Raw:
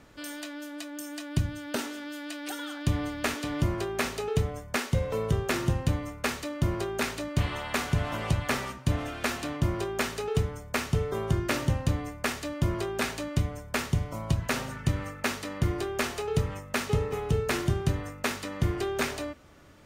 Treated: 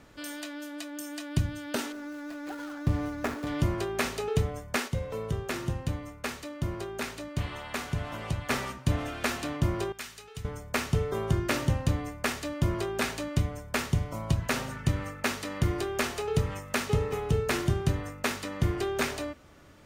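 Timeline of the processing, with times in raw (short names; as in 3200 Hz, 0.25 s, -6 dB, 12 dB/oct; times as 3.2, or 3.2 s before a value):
1.92–3.47 median filter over 15 samples
4.88–8.5 gain -5 dB
9.92–10.45 passive tone stack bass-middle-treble 5-5-5
15.27–17.17 mismatched tape noise reduction encoder only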